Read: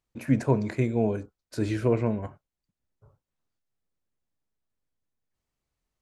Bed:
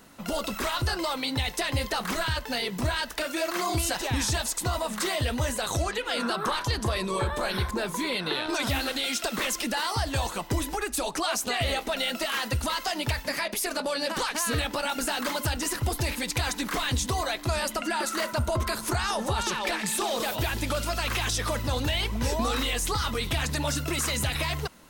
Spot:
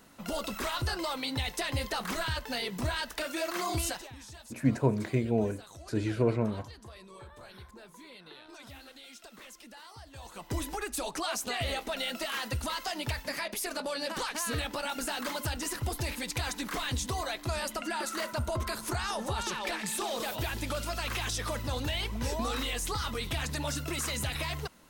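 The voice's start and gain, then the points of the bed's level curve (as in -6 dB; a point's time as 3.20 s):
4.35 s, -3.0 dB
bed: 3.88 s -4.5 dB
4.15 s -21.5 dB
10.13 s -21.5 dB
10.56 s -5.5 dB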